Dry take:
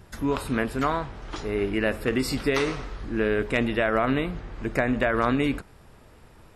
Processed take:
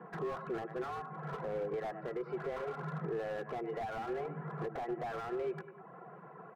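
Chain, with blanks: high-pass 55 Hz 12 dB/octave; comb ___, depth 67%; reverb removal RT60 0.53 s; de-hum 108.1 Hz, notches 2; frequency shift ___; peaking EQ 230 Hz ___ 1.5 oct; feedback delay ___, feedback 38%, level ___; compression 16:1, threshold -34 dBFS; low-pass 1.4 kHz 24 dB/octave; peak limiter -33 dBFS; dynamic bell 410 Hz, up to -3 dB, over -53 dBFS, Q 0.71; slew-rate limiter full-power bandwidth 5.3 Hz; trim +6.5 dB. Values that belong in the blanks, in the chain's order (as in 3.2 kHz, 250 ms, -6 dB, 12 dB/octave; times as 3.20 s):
3.2 ms, +110 Hz, -11.5 dB, 99 ms, -18 dB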